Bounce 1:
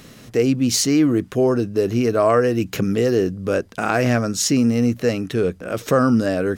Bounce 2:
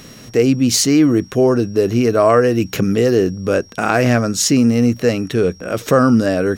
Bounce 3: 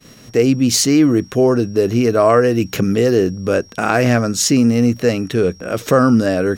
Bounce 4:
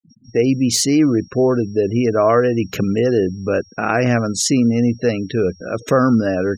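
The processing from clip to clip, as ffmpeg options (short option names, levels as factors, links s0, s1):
-af "aeval=exprs='val(0)+0.00398*sin(2*PI*5600*n/s)':c=same,volume=1.58"
-af "agate=range=0.0224:threshold=0.02:ratio=3:detection=peak"
-af "afftfilt=real='re*gte(hypot(re,im),0.0447)':imag='im*gte(hypot(re,im),0.0447)':win_size=1024:overlap=0.75,volume=0.794"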